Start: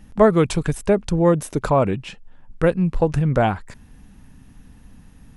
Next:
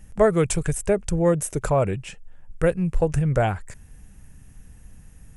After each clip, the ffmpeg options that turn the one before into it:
ffmpeg -i in.wav -af "equalizer=frequency=250:width_type=o:width=1:gain=-11,equalizer=frequency=1000:width_type=o:width=1:gain=-8,equalizer=frequency=4000:width_type=o:width=1:gain=-10,equalizer=frequency=8000:width_type=o:width=1:gain=7,volume=1.5dB" out.wav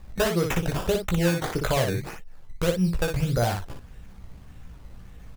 ffmpeg -i in.wav -filter_complex "[0:a]acompressor=threshold=-21dB:ratio=10,acrusher=samples=15:mix=1:aa=0.000001:lfo=1:lforange=15:lforate=1.7,asplit=2[link_01][link_02];[link_02]aecho=0:1:17|59:0.531|0.562[link_03];[link_01][link_03]amix=inputs=2:normalize=0" out.wav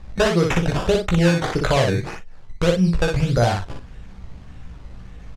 ffmpeg -i in.wav -filter_complex "[0:a]lowpass=6300,asplit=2[link_01][link_02];[link_02]adelay=42,volume=-13dB[link_03];[link_01][link_03]amix=inputs=2:normalize=0,volume=5.5dB" out.wav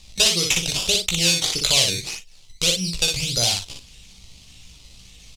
ffmpeg -i in.wav -af "aexciter=amount=16:drive=4.8:freq=2500,volume=-11dB" out.wav

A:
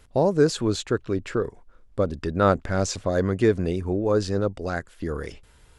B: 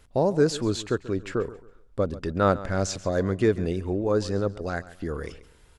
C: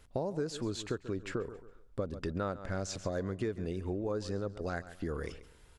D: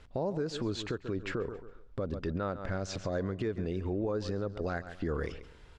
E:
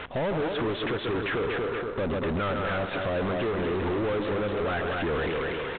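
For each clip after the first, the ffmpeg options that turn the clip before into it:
ffmpeg -i in.wav -af "aecho=1:1:137|274|411:0.141|0.0424|0.0127,volume=-2dB" out.wav
ffmpeg -i in.wav -af "acompressor=threshold=-28dB:ratio=6,volume=-3.5dB" out.wav
ffmpeg -i in.wav -af "alimiter=level_in=5dB:limit=-24dB:level=0:latency=1:release=95,volume=-5dB,lowpass=4600,volume=5dB" out.wav
ffmpeg -i in.wav -filter_complex "[0:a]aecho=1:1:239|478|717:0.376|0.0977|0.0254,asplit=2[link_01][link_02];[link_02]highpass=frequency=720:poles=1,volume=36dB,asoftclip=type=tanh:threshold=-21.5dB[link_03];[link_01][link_03]amix=inputs=2:normalize=0,lowpass=frequency=2600:poles=1,volume=-6dB" -ar 8000 -c:a adpcm_ima_wav out.wav

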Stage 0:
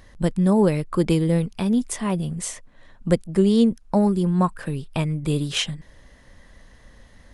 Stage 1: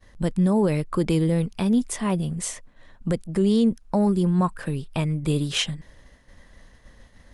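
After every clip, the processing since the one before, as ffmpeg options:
ffmpeg -i in.wav -af "agate=range=-33dB:threshold=-45dB:ratio=3:detection=peak,alimiter=limit=-12.5dB:level=0:latency=1:release=36" out.wav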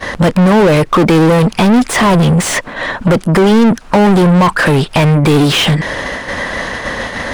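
ffmpeg -i in.wav -filter_complex "[0:a]asplit=2[link_01][link_02];[link_02]highpass=frequency=720:poles=1,volume=35dB,asoftclip=type=tanh:threshold=-12dB[link_03];[link_01][link_03]amix=inputs=2:normalize=0,lowpass=frequency=1800:poles=1,volume=-6dB,asplit=2[link_04][link_05];[link_05]acompressor=threshold=-27dB:ratio=6,volume=0dB[link_06];[link_04][link_06]amix=inputs=2:normalize=0,volume=7.5dB" out.wav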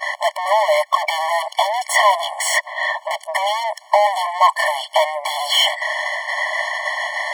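ffmpeg -i in.wav -af "afftfilt=real='re*eq(mod(floor(b*sr/1024/580),2),1)':imag='im*eq(mod(floor(b*sr/1024/580),2),1)':win_size=1024:overlap=0.75" out.wav

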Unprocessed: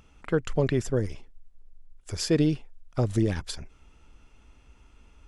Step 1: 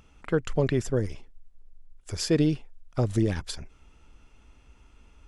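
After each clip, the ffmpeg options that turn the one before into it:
ffmpeg -i in.wav -af anull out.wav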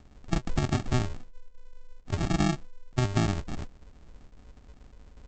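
ffmpeg -i in.wav -af "acompressor=threshold=-26dB:ratio=4,aresample=16000,acrusher=samples=32:mix=1:aa=0.000001,aresample=44100,volume=4dB" out.wav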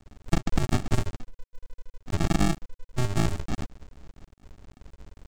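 ffmpeg -i in.wav -af "aeval=exprs='max(val(0),0)':channel_layout=same,acontrast=80,acrusher=bits=9:mode=log:mix=0:aa=0.000001" out.wav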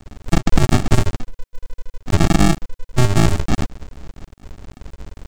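ffmpeg -i in.wav -af "alimiter=level_in=13.5dB:limit=-1dB:release=50:level=0:latency=1,volume=-1dB" out.wav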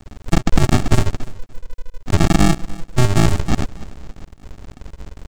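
ffmpeg -i in.wav -af "aecho=1:1:291|582:0.1|0.026" out.wav

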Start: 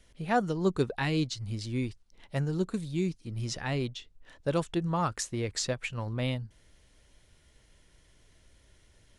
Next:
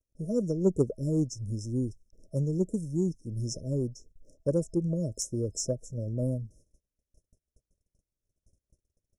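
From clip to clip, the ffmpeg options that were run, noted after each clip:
ffmpeg -i in.wav -af "afftfilt=real='re*(1-between(b*sr/4096,650,5200))':imag='im*(1-between(b*sr/4096,650,5200))':win_size=4096:overlap=0.75,aeval=exprs='0.188*(cos(1*acos(clip(val(0)/0.188,-1,1)))-cos(1*PI/2))+0.0133*(cos(3*acos(clip(val(0)/0.188,-1,1)))-cos(3*PI/2))':channel_layout=same,agate=range=-31dB:threshold=-58dB:ratio=16:detection=peak,volume=3.5dB" out.wav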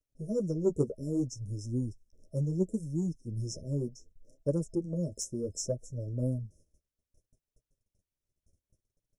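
ffmpeg -i in.wav -af "flanger=delay=6.7:depth=6.8:regen=-13:speed=0.66:shape=sinusoidal" out.wav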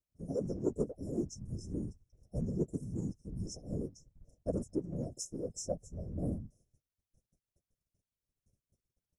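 ffmpeg -i in.wav -af "afftfilt=real='hypot(re,im)*cos(2*PI*random(0))':imag='hypot(re,im)*sin(2*PI*random(1))':win_size=512:overlap=0.75,volume=1dB" out.wav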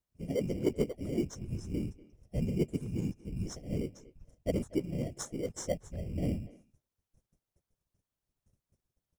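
ffmpeg -i in.wav -filter_complex "[0:a]asplit=2[link_01][link_02];[link_02]acrusher=samples=17:mix=1:aa=0.000001,volume=-6dB[link_03];[link_01][link_03]amix=inputs=2:normalize=0,asplit=2[link_04][link_05];[link_05]adelay=240,highpass=300,lowpass=3400,asoftclip=type=hard:threshold=-25.5dB,volume=-18dB[link_06];[link_04][link_06]amix=inputs=2:normalize=0" out.wav

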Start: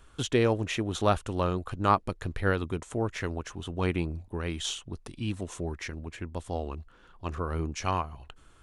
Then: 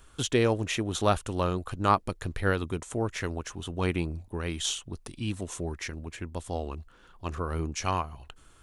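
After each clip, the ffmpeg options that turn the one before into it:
ffmpeg -i in.wav -af "highshelf=frequency=5500:gain=7.5" out.wav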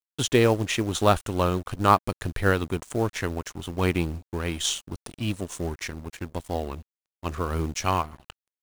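ffmpeg -i in.wav -af "aeval=exprs='sgn(val(0))*max(abs(val(0))-0.00562,0)':channel_layout=same,acrusher=bits=6:mode=log:mix=0:aa=0.000001,volume=5dB" out.wav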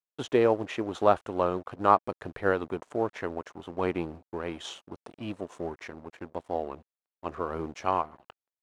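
ffmpeg -i in.wav -af "bandpass=frequency=650:width_type=q:width=0.81:csg=0" out.wav

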